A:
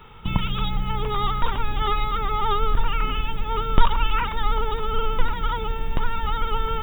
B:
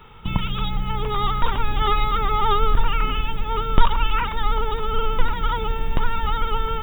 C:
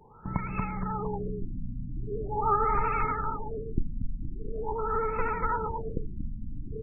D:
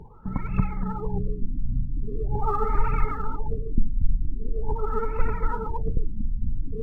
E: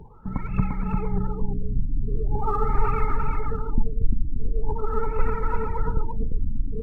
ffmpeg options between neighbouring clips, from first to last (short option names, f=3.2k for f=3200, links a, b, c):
-af "dynaudnorm=f=520:g=5:m=4.5dB"
-af "lowshelf=f=78:g=-11.5,aecho=1:1:235|470|705|940|1175|1410|1645:0.562|0.309|0.17|0.0936|0.0515|0.0283|0.0156,afftfilt=real='re*lt(b*sr/1024,280*pow(2700/280,0.5+0.5*sin(2*PI*0.43*pts/sr)))':imag='im*lt(b*sr/1024,280*pow(2700/280,0.5+0.5*sin(2*PI*0.43*pts/sr)))':win_size=1024:overlap=0.75,volume=-4.5dB"
-af "lowshelf=f=290:g=10.5,areverse,acompressor=mode=upward:threshold=-23dB:ratio=2.5,areverse,aphaser=in_gain=1:out_gain=1:delay=5:decay=0.55:speed=1.7:type=triangular,volume=-5dB"
-af "aecho=1:1:347:0.631,aresample=32000,aresample=44100"